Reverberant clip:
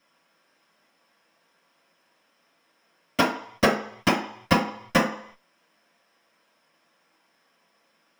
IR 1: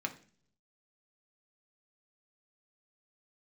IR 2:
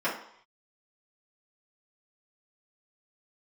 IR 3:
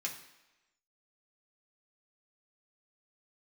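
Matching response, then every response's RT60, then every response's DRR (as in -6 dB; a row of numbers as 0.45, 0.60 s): 2; 0.45, 0.65, 1.0 s; 3.0, -10.5, -2.0 dB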